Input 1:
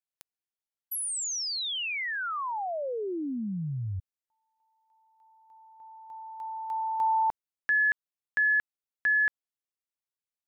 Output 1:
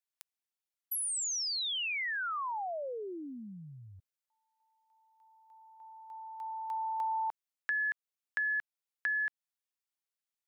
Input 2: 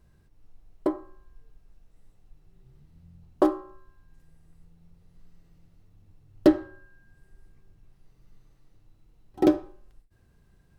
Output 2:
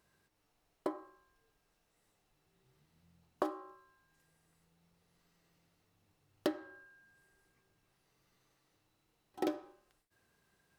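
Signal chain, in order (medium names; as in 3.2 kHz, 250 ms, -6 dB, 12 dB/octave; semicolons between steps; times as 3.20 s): high-pass 880 Hz 6 dB/octave; compression 3:1, threshold -33 dBFS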